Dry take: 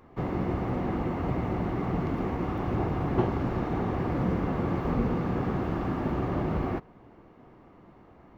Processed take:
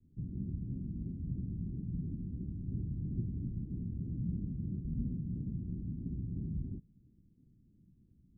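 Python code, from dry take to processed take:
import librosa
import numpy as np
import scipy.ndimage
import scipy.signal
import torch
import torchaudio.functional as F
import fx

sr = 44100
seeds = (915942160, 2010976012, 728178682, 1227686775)

y = scipy.signal.sosfilt(scipy.signal.cheby2(4, 80, 1300.0, 'lowpass', fs=sr, output='sos'), x)
y = fx.vibrato(y, sr, rate_hz=3.0, depth_cents=96.0)
y = y * 10.0 ** (-6.5 / 20.0)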